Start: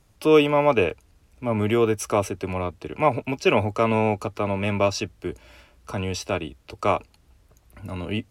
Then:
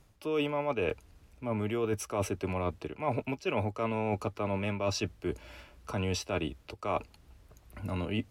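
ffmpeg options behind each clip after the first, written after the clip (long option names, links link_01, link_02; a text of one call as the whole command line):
ffmpeg -i in.wav -af "equalizer=frequency=8500:width_type=o:width=1.5:gain=-3,areverse,acompressor=threshold=-28dB:ratio=8,areverse" out.wav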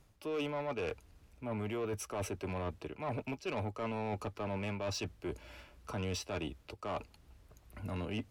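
ffmpeg -i in.wav -af "asoftclip=type=tanh:threshold=-28dB,volume=-3dB" out.wav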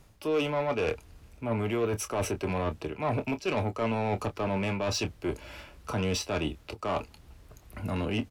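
ffmpeg -i in.wav -filter_complex "[0:a]asplit=2[link_01][link_02];[link_02]adelay=26,volume=-10.5dB[link_03];[link_01][link_03]amix=inputs=2:normalize=0,volume=8dB" out.wav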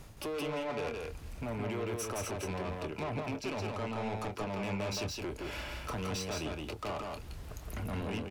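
ffmpeg -i in.wav -af "acompressor=threshold=-39dB:ratio=6,asoftclip=type=tanh:threshold=-40dB,aecho=1:1:168:0.708,volume=6.5dB" out.wav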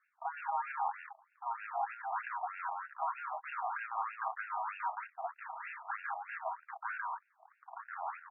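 ffmpeg -i in.wav -af "afwtdn=0.00562,highpass=frequency=280:width_type=q:width=0.5412,highpass=frequency=280:width_type=q:width=1.307,lowpass=frequency=2400:width_type=q:width=0.5176,lowpass=frequency=2400:width_type=q:width=0.7071,lowpass=frequency=2400:width_type=q:width=1.932,afreqshift=350,afftfilt=real='re*between(b*sr/1024,880*pow(2000/880,0.5+0.5*sin(2*PI*3.2*pts/sr))/1.41,880*pow(2000/880,0.5+0.5*sin(2*PI*3.2*pts/sr))*1.41)':imag='im*between(b*sr/1024,880*pow(2000/880,0.5+0.5*sin(2*PI*3.2*pts/sr))/1.41,880*pow(2000/880,0.5+0.5*sin(2*PI*3.2*pts/sr))*1.41)':win_size=1024:overlap=0.75,volume=4dB" out.wav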